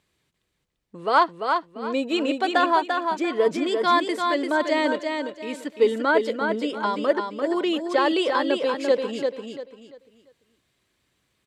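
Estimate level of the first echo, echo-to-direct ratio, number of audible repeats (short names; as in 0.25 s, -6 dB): -5.0 dB, -4.5 dB, 3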